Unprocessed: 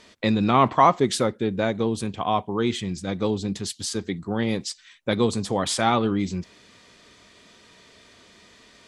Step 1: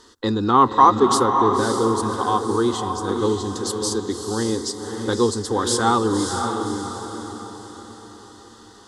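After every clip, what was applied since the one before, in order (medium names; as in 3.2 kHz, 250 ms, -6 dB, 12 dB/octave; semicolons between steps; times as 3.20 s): static phaser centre 630 Hz, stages 6; echo that smears into a reverb 568 ms, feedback 45%, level -5 dB; trim +5.5 dB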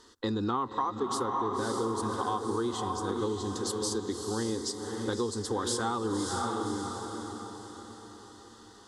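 compression 16:1, threshold -20 dBFS, peak gain reduction 13.5 dB; trim -6.5 dB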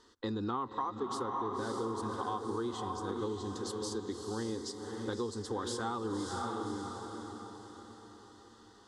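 treble shelf 8.8 kHz -11.5 dB; trim -5 dB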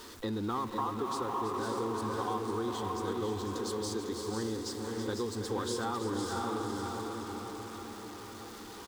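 jump at every zero crossing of -44 dBFS; multi-tap echo 326/499 ms -10.5/-8 dB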